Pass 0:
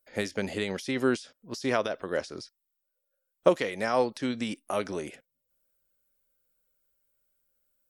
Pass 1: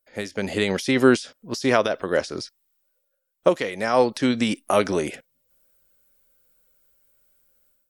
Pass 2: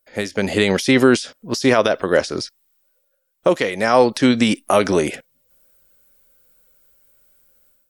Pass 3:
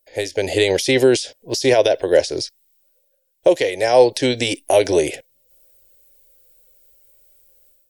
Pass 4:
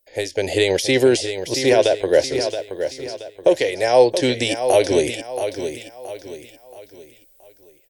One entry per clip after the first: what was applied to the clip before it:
automatic gain control gain up to 12.5 dB; level −1 dB
boost into a limiter +8 dB; level −1.5 dB
phaser with its sweep stopped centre 510 Hz, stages 4; level +3 dB
repeating echo 675 ms, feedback 38%, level −9 dB; level −1 dB

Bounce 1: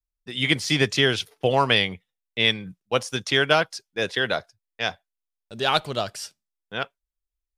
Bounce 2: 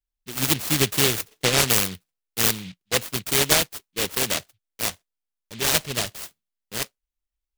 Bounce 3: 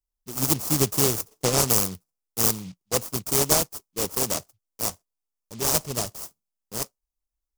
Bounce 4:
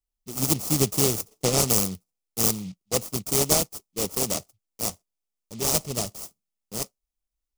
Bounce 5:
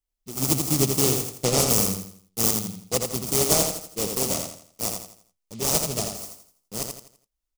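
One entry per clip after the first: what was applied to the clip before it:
short delay modulated by noise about 2,900 Hz, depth 0.34 ms
flat-topped bell 2,500 Hz −11 dB
thirty-one-band graphic EQ 200 Hz +4 dB, 1,000 Hz −5 dB, 1,600 Hz −8 dB, 16,000 Hz −5 dB
repeating echo 83 ms, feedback 37%, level −5 dB

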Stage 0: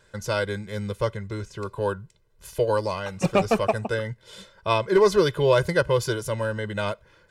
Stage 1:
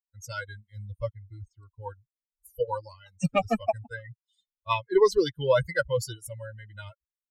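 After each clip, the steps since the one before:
spectral dynamics exaggerated over time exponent 3
level +1.5 dB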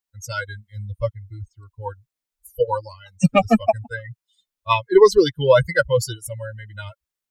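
dynamic equaliser 220 Hz, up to +5 dB, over −44 dBFS, Q 2.6
level +8 dB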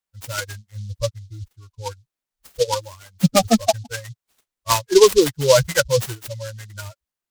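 short delay modulated by noise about 4,700 Hz, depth 0.083 ms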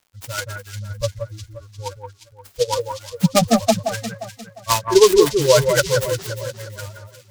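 surface crackle 140 per second −48 dBFS
on a send: delay that swaps between a low-pass and a high-pass 176 ms, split 1,800 Hz, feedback 60%, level −5.5 dB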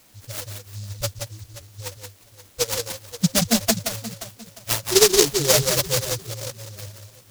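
background noise white −43 dBFS
high-frequency loss of the air 150 metres
short delay modulated by noise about 5,300 Hz, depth 0.3 ms
level −3.5 dB

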